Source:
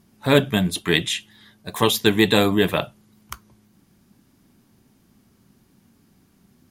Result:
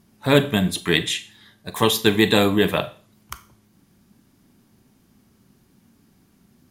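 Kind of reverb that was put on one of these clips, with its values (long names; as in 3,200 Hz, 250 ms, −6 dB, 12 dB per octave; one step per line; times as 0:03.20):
four-comb reverb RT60 0.41 s, combs from 28 ms, DRR 12.5 dB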